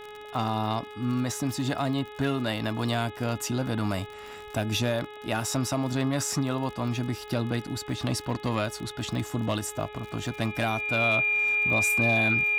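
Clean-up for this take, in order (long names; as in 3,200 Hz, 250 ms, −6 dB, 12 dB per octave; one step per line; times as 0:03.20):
click removal
hum removal 420.8 Hz, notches 9
notch filter 2,400 Hz, Q 30
repair the gap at 0:07.67, 5.2 ms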